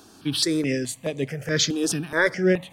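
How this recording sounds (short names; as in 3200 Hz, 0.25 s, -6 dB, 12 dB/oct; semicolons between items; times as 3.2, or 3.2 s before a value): notches that jump at a steady rate 4.7 Hz 550–5300 Hz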